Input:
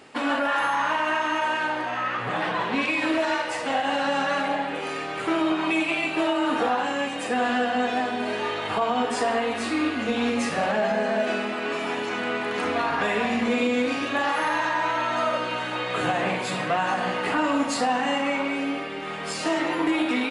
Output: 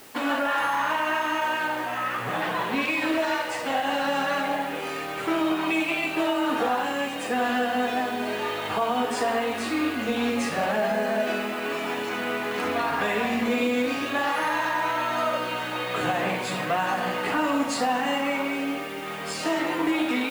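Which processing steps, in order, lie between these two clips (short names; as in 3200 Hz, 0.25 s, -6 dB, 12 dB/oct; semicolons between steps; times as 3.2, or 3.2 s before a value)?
added noise white -49 dBFS; gain -1 dB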